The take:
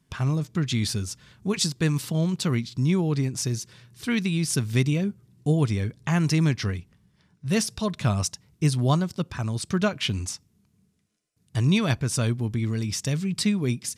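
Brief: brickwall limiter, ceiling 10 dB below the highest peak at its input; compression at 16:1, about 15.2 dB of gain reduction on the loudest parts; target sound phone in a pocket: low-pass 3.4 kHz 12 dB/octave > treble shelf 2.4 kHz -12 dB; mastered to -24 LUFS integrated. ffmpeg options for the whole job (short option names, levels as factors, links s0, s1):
-af "acompressor=threshold=0.0251:ratio=16,alimiter=level_in=1.5:limit=0.0631:level=0:latency=1,volume=0.668,lowpass=3400,highshelf=f=2400:g=-12,volume=5.96"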